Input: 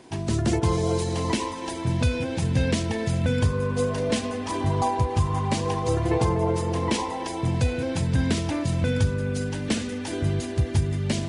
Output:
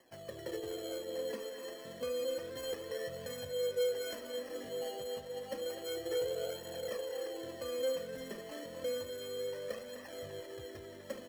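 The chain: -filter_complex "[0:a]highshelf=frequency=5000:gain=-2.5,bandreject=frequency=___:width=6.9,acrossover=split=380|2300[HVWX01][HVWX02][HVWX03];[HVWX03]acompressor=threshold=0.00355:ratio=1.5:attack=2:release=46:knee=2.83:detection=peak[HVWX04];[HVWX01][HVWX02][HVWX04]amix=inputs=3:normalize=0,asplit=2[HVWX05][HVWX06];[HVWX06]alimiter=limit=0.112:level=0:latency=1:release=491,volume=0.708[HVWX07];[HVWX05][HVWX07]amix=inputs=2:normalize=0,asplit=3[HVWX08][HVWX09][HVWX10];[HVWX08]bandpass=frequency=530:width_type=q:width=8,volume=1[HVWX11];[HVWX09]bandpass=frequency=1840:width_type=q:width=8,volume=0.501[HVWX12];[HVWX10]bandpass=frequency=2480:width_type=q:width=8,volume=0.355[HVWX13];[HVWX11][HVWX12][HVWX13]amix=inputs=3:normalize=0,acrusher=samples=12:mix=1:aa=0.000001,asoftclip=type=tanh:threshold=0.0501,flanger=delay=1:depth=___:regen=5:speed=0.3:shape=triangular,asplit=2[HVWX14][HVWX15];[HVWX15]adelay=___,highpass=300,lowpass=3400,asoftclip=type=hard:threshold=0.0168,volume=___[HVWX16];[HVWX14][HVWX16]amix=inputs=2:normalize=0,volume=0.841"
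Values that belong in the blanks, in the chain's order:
1000, 4, 250, 0.447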